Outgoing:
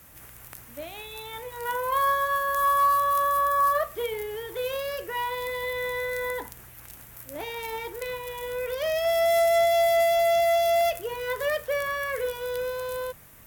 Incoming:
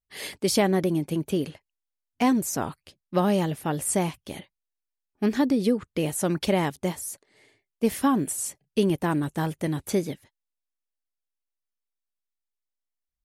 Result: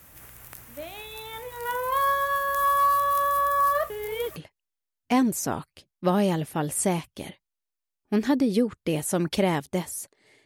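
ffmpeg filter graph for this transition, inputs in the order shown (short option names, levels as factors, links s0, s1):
-filter_complex "[0:a]apad=whole_dur=10.45,atrim=end=10.45,asplit=2[s0][s1];[s0]atrim=end=3.902[s2];[s1]atrim=start=3.898:end=4.362,asetpts=PTS-STARTPTS,areverse[s3];[1:a]atrim=start=1.458:end=7.55[s4];[s2][s3]acrossfade=d=0.004:c1=hsin:c2=hsin[s5];[s5][s4]acrossfade=d=0.004:c1=hsin:c2=hsin"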